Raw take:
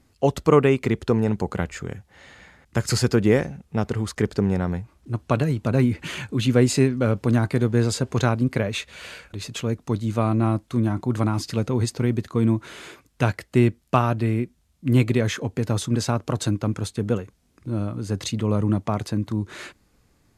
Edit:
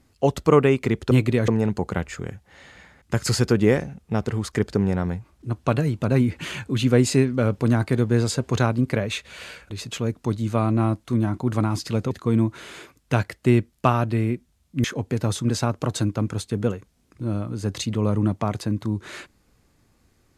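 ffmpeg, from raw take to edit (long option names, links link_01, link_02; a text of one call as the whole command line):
ffmpeg -i in.wav -filter_complex "[0:a]asplit=5[link_01][link_02][link_03][link_04][link_05];[link_01]atrim=end=1.112[link_06];[link_02]atrim=start=14.928:end=15.302[link_07];[link_03]atrim=start=1.108:end=11.742[link_08];[link_04]atrim=start=12.198:end=14.932[link_09];[link_05]atrim=start=15.298[link_10];[link_06][link_07]acrossfade=duration=0.004:curve1=hsin:curve2=hsin[link_11];[link_11][link_08]acrossfade=duration=0.004:curve1=hsin:curve2=hsin[link_12];[link_12][link_09]acrossfade=duration=0.004:curve1=hsin:curve2=hsin[link_13];[link_13][link_10]acrossfade=duration=0.004:curve1=hsin:curve2=hsin" out.wav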